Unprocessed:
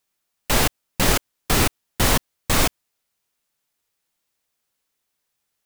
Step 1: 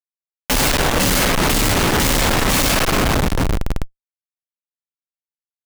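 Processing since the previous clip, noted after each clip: two-slope reverb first 0.31 s, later 4.4 s, from -18 dB, DRR -5.5 dB; Schmitt trigger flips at -26 dBFS; trim +1.5 dB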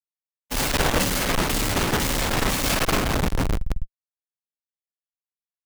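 gate -16 dBFS, range -48 dB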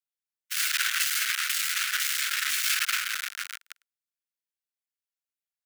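Chebyshev high-pass 1.4 kHz, order 5

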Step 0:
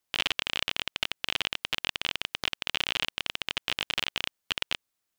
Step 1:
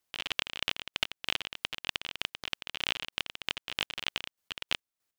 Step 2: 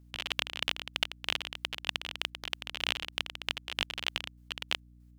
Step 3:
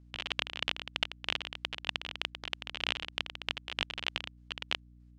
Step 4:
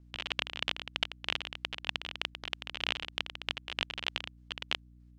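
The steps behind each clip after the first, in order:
square tremolo 3.2 Hz, depth 65%, duty 35%
hum 60 Hz, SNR 19 dB
distance through air 84 m
vibrato 8.9 Hz 47 cents

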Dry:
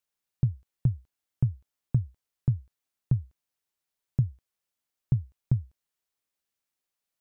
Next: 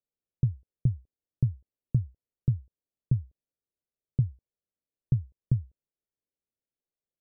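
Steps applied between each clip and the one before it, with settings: Chebyshev low-pass 530 Hz, order 3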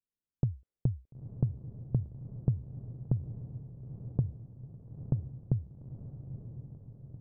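level-controlled noise filter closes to 330 Hz, open at -24 dBFS; compression, threshold -24 dBFS, peak gain reduction 5.5 dB; echo that smears into a reverb 936 ms, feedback 59%, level -10 dB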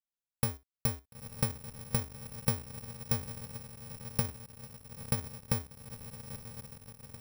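bit-reversed sample order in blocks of 128 samples; in parallel at -3.5 dB: bit crusher 8-bit; on the sum: trim -6.5 dB

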